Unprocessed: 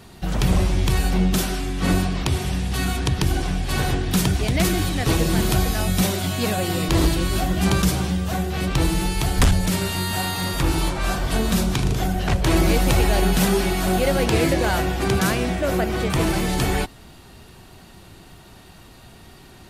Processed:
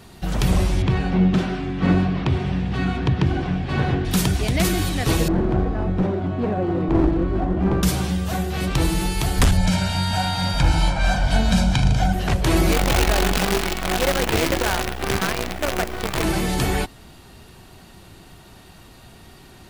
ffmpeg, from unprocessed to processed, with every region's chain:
-filter_complex "[0:a]asettb=1/sr,asplit=3[s0][s1][s2];[s0]atrim=end=0.824[s3];[s1]atrim=start=0.82:end=4.05,asetpts=PTS-STARTPTS,afade=t=in:d=0.004:c=qsin,afade=t=out:st=3.226:d=0.004:c=qsin,highpass=110,lowpass=2700,lowshelf=f=230:g=7.5[s4];[s2]atrim=start=4.046[s5];[s3][s4]acrossfade=d=0.004:c1=hsin:c2=qsin[s6];[s6][s5]acrossfade=d=0.004:c1=qsin:c2=hsin,asettb=1/sr,asplit=3[s7][s8][s9];[s7]atrim=end=5.284[s10];[s8]atrim=start=5.28:end=7.83,asetpts=PTS-STARTPTS,afade=t=in:d=0.004:c=qsin,afade=t=out:st=2.546:d=0.004:c=qsin,lowpass=1100,equalizer=f=320:w=2.1:g=6.5,aeval=exprs='clip(val(0),-1,0.119)':c=same[s11];[s9]atrim=start=7.826[s12];[s10][s11]acrossfade=d=0.004:c1=hsin:c2=qsin[s13];[s13][s12]acrossfade=d=0.004:c1=qsin:c2=hsin,asettb=1/sr,asplit=3[s14][s15][s16];[s14]atrim=end=9.574[s17];[s15]atrim=start=9.57:end=12.13,asetpts=PTS-STARTPTS,afade=t=in:d=0.004:c=qsin,afade=t=out:st=2.556:d=0.004:c=qsin,lowpass=6500,aecho=1:1:1.3:0.8,atrim=end_sample=112896[s18];[s16]atrim=start=12.126[s19];[s17][s18]acrossfade=d=0.004:c1=hsin:c2=qsin[s20];[s20][s19]acrossfade=d=0.004:c1=qsin:c2=hsin,asettb=1/sr,asplit=3[s21][s22][s23];[s21]atrim=end=12.724[s24];[s22]atrim=start=12.72:end=16.24,asetpts=PTS-STARTPTS,afade=t=in:d=0.004:c=qsin,afade=t=out:st=3.516:d=0.004:c=qsin,lowpass=3600,equalizer=f=150:t=o:w=2:g=-5.5,acrusher=bits=4:dc=4:mix=0:aa=0.000001[s25];[s23]atrim=start=16.236[s26];[s24][s25]acrossfade=d=0.004:c1=hsin:c2=qsin[s27];[s27][s26]acrossfade=d=0.004:c1=qsin:c2=hsin"

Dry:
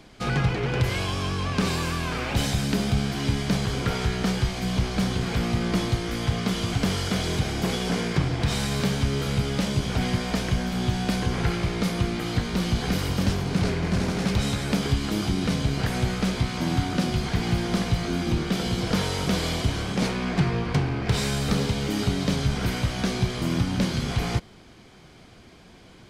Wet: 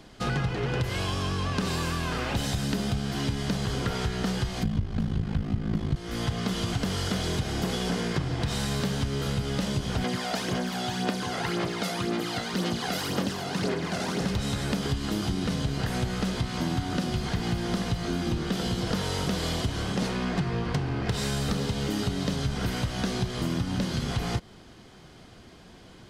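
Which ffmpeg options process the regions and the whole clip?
-filter_complex "[0:a]asettb=1/sr,asplit=3[s0][s1][s2];[s0]atrim=end=4.634[s3];[s1]atrim=start=4.63:end=5.96,asetpts=PTS-STARTPTS,afade=t=in:d=0.004:c=qsin,afade=t=out:st=1.326:d=0.004:c=qsin,bass=f=250:g=13,treble=f=4000:g=-8,aeval=exprs='val(0)*sin(2*PI*26*n/s)':c=same[s4];[s2]atrim=start=5.956[s5];[s3][s4]acrossfade=d=0.004:c1=hsin:c2=qsin[s6];[s6][s5]acrossfade=d=0.004:c1=qsin:c2=hsin,asettb=1/sr,asplit=3[s7][s8][s9];[s7]atrim=end=10.044[s10];[s8]atrim=start=10.04:end=14.21,asetpts=PTS-STARTPTS,afade=t=in:d=0.004:c=qsin,afade=t=out:st=4.166:d=0.004:c=qsin,highpass=250,aphaser=in_gain=1:out_gain=1:delay=1.5:decay=0.52:speed=1.9:type=sinusoidal[s11];[s9]atrim=start=14.206[s12];[s10][s11]acrossfade=d=0.004:c1=hsin:c2=qsin[s13];[s13][s12]acrossfade=d=0.004:c1=qsin:c2=hsin,bandreject=f=2300:w=10,acompressor=threshold=0.0631:ratio=6"

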